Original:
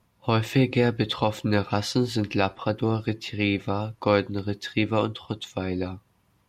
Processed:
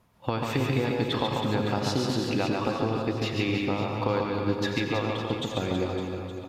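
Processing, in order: peaking EQ 670 Hz +3.5 dB 2.7 oct; compression, threshold -25 dBFS, peak gain reduction 12 dB; reverse bouncing-ball echo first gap 140 ms, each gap 1.3×, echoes 5; reverberation RT60 1.3 s, pre-delay 83 ms, DRR 4.5 dB

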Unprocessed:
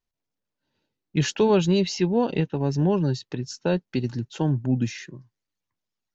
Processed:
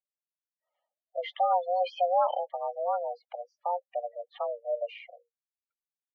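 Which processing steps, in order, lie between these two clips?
1.80–2.37 s: waveshaping leveller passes 2; spectral gate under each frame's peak -15 dB strong; mistuned SSB +350 Hz 200–2900 Hz; trim -5.5 dB

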